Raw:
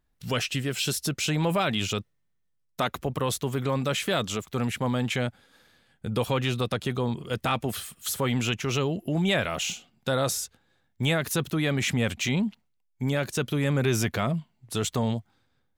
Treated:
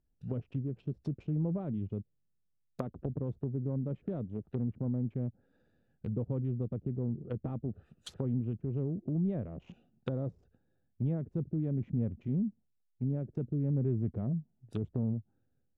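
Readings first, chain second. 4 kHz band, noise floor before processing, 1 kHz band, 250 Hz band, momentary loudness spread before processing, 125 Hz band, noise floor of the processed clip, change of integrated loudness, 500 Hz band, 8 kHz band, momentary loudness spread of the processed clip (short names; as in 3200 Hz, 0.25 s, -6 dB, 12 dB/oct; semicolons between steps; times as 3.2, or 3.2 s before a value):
-29.5 dB, -72 dBFS, -22.5 dB, -5.5 dB, 7 LU, -4.0 dB, -76 dBFS, -8.0 dB, -12.0 dB, under -30 dB, 8 LU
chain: Wiener smoothing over 41 samples; treble ducked by the level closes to 330 Hz, closed at -27 dBFS; gain -4 dB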